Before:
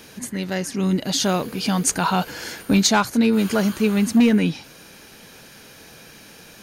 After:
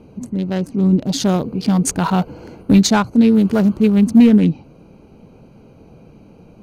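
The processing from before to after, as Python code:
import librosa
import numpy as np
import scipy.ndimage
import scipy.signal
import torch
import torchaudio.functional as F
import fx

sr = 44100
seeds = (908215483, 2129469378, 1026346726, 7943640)

y = fx.wiener(x, sr, points=25)
y = fx.low_shelf(y, sr, hz=370.0, db=9.0)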